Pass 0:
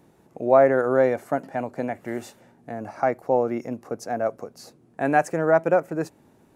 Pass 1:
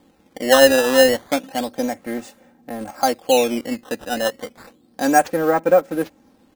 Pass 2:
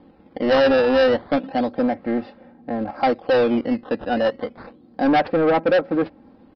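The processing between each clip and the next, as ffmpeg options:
-filter_complex "[0:a]asplit=2[s0][s1];[s1]acrusher=bits=4:mix=0:aa=0.000001,volume=0.251[s2];[s0][s2]amix=inputs=2:normalize=0,aecho=1:1:3.8:0.78,acrusher=samples=11:mix=1:aa=0.000001:lfo=1:lforange=17.6:lforate=0.31"
-af "lowpass=f=1100:p=1,aresample=11025,asoftclip=type=tanh:threshold=0.112,aresample=44100,volume=2"

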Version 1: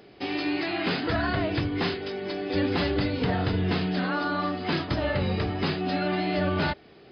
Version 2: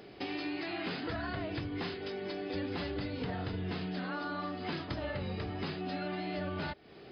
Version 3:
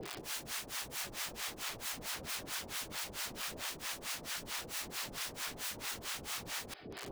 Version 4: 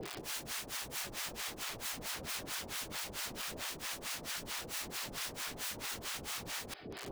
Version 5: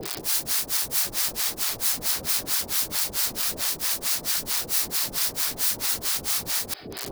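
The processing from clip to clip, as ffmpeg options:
-af "acompressor=threshold=0.0126:ratio=3"
-filter_complex "[0:a]acrossover=split=330[s0][s1];[s1]alimiter=level_in=4.73:limit=0.0631:level=0:latency=1:release=26,volume=0.211[s2];[s0][s2]amix=inputs=2:normalize=0,aeval=exprs='(mod(178*val(0)+1,2)-1)/178':c=same,acrossover=split=660[s3][s4];[s3]aeval=exprs='val(0)*(1-1/2+1/2*cos(2*PI*4.5*n/s))':c=same[s5];[s4]aeval=exprs='val(0)*(1-1/2-1/2*cos(2*PI*4.5*n/s))':c=same[s6];[s5][s6]amix=inputs=2:normalize=0,volume=3.98"
-af "alimiter=level_in=2.11:limit=0.0631:level=0:latency=1:release=42,volume=0.473,volume=1.19"
-af "aexciter=amount=1.8:drive=7.7:freq=4100,volume=2.51"

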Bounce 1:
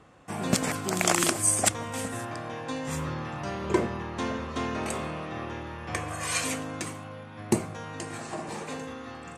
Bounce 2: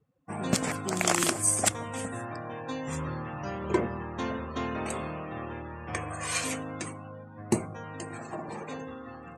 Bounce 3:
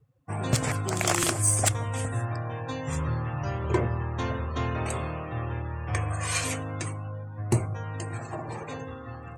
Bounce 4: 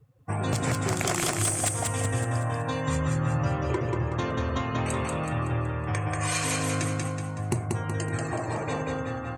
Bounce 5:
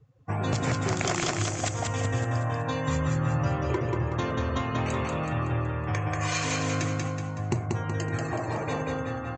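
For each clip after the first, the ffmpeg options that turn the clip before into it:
-af "afftdn=nr=27:nf=-43,volume=0.841"
-filter_complex "[0:a]lowshelf=f=150:t=q:w=3:g=6.5,asplit=2[s0][s1];[s1]aeval=exprs='0.447*sin(PI/2*2.51*val(0)/0.447)':c=same,volume=0.316[s2];[s0][s2]amix=inputs=2:normalize=0,volume=0.562"
-filter_complex "[0:a]acompressor=threshold=0.0316:ratio=6,asplit=2[s0][s1];[s1]aecho=0:1:187|374|561|748|935|1122:0.708|0.333|0.156|0.0735|0.0345|0.0162[s2];[s0][s2]amix=inputs=2:normalize=0,volume=1.78"
-af "aresample=16000,aresample=44100"

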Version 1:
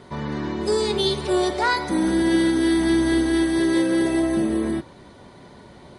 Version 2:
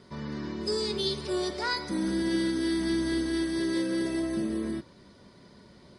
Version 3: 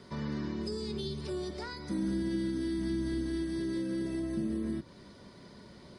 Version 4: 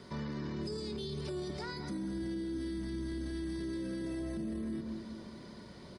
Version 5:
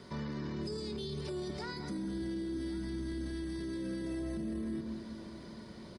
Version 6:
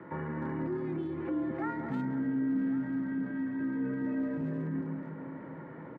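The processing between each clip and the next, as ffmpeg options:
-af "equalizer=f=200:t=o:w=0.33:g=5,equalizer=f=800:t=o:w=0.33:g=-9,equalizer=f=5000:t=o:w=0.33:g=11,volume=0.355"
-filter_complex "[0:a]acrossover=split=260[s0][s1];[s1]acompressor=threshold=0.00891:ratio=10[s2];[s0][s2]amix=inputs=2:normalize=0,volume=1.19"
-filter_complex "[0:a]asplit=2[s0][s1];[s1]adelay=212,lowpass=f=1100:p=1,volume=0.355,asplit=2[s2][s3];[s3]adelay=212,lowpass=f=1100:p=1,volume=0.55,asplit=2[s4][s5];[s5]adelay=212,lowpass=f=1100:p=1,volume=0.55,asplit=2[s6][s7];[s7]adelay=212,lowpass=f=1100:p=1,volume=0.55,asplit=2[s8][s9];[s9]adelay=212,lowpass=f=1100:p=1,volume=0.55,asplit=2[s10][s11];[s11]adelay=212,lowpass=f=1100:p=1,volume=0.55[s12];[s0][s2][s4][s6][s8][s10][s12]amix=inputs=7:normalize=0,alimiter=level_in=2.66:limit=0.0631:level=0:latency=1:release=12,volume=0.376,volume=1.12"
-af "aecho=1:1:1106:0.141"
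-filter_complex "[0:a]highpass=f=240:t=q:w=0.5412,highpass=f=240:t=q:w=1.307,lowpass=f=2100:t=q:w=0.5176,lowpass=f=2100:t=q:w=0.7071,lowpass=f=2100:t=q:w=1.932,afreqshift=-62,asplit=2[s0][s1];[s1]adelay=300,highpass=300,lowpass=3400,asoftclip=type=hard:threshold=0.0112,volume=0.447[s2];[s0][s2]amix=inputs=2:normalize=0,volume=2.24"

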